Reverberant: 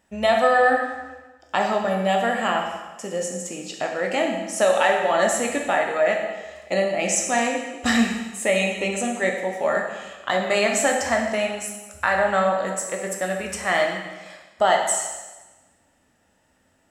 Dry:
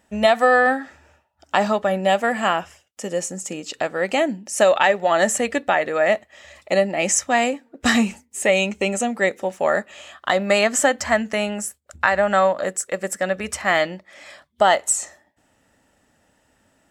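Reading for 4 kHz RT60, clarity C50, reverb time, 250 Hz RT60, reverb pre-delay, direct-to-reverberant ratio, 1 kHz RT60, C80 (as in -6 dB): 1.1 s, 4.0 dB, 1.2 s, 1.2 s, 6 ms, 1.0 dB, 1.2 s, 6.0 dB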